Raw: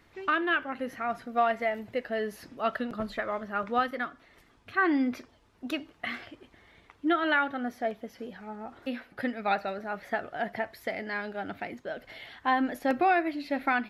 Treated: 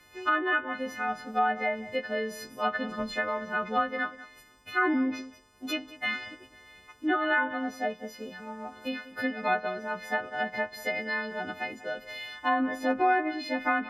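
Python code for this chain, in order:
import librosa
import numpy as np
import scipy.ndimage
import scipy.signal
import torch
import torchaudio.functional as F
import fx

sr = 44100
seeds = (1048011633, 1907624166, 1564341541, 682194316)

y = fx.freq_snap(x, sr, grid_st=3)
y = y + 10.0 ** (-17.0 / 20.0) * np.pad(y, (int(191 * sr / 1000.0), 0))[:len(y)]
y = fx.env_lowpass_down(y, sr, base_hz=1800.0, full_db=-22.0)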